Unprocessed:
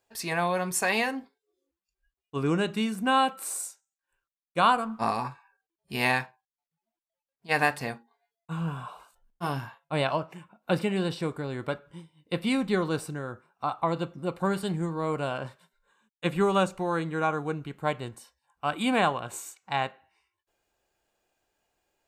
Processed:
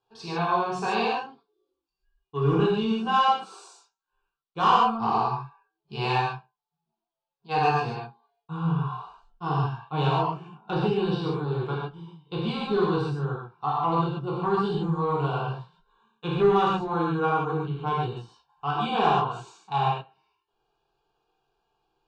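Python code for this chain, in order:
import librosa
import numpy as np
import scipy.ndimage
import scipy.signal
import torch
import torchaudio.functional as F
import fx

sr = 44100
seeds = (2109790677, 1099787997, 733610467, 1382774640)

y = scipy.signal.sosfilt(scipy.signal.butter(4, 4200.0, 'lowpass', fs=sr, output='sos'), x)
y = fx.fixed_phaser(y, sr, hz=390.0, stages=8)
y = 10.0 ** (-18.5 / 20.0) * np.tanh(y / 10.0 ** (-18.5 / 20.0))
y = fx.rev_gated(y, sr, seeds[0], gate_ms=170, shape='flat', drr_db=-6.0)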